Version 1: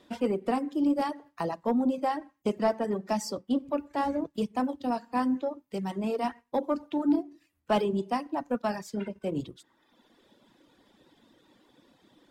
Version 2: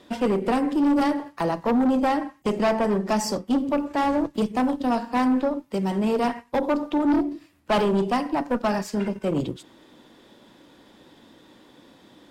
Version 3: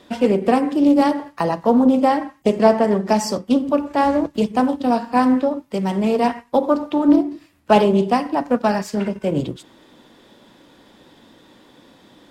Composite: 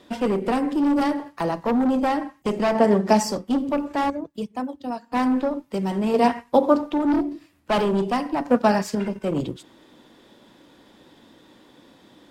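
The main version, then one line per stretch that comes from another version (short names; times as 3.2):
2
2.75–3.23 from 3
4.1–5.12 from 1
6.14–6.81 from 3
8.45–8.95 from 3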